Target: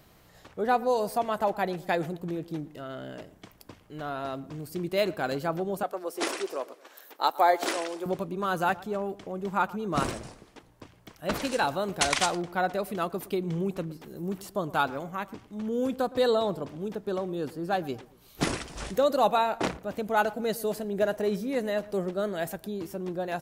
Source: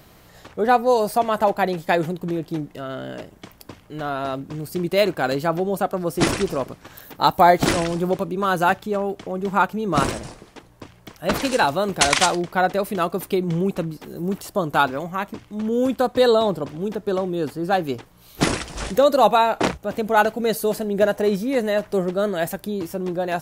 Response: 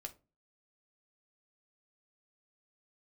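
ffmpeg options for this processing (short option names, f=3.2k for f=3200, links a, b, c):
-filter_complex "[0:a]asettb=1/sr,asplit=3[a][b][c];[a]atrim=end=5.834[d];[b]atrim=start=5.83:end=8.06,asetpts=PTS-STARTPTS,afade=t=in:d=0.004:c=qsin,afade=t=out:st=2.226:d=0.004:c=qsin,highpass=f=350:w=0.5412,highpass=f=350:w=1.3066[e];[c]atrim=start=8.056[f];[d][e]acrossfade=d=0.004:c1=hsin:c2=qsin[g];[g][f]acrossfade=d=0.004:c1=qsin:c2=hsin,asplit=2[h][i];[i]adelay=115,lowpass=f=1.4k:p=1,volume=-18dB,asplit=2[j][k];[k]adelay=115,lowpass=f=1.4k:p=1,volume=0.41,asplit=2[l][m];[m]adelay=115,lowpass=f=1.4k:p=1,volume=0.41[n];[h][j][l][n]amix=inputs=4:normalize=0,volume=-8dB"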